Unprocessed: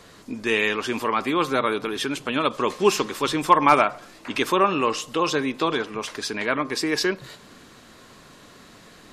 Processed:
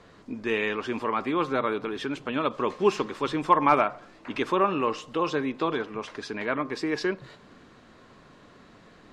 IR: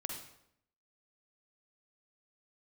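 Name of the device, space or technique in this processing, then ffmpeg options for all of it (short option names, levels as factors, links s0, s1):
through cloth: -af "lowpass=8200,highshelf=f=3500:g=-13,volume=0.708"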